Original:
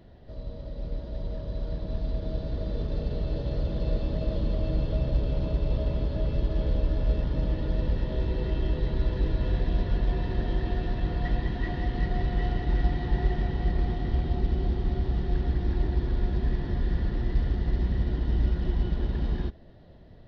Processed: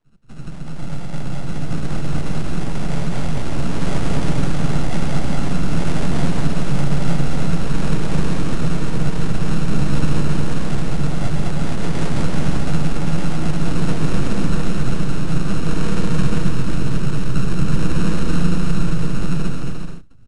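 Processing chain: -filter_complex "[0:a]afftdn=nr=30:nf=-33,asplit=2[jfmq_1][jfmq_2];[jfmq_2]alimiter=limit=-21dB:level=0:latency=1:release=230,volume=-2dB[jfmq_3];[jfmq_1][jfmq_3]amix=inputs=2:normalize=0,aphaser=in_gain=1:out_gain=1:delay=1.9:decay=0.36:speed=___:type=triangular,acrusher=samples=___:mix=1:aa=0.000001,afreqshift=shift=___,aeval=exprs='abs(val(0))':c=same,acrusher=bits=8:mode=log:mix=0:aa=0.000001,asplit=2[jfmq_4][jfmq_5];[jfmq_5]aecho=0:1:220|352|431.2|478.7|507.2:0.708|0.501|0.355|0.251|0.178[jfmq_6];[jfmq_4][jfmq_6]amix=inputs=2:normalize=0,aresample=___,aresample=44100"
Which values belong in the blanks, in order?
0.5, 33, 32, 22050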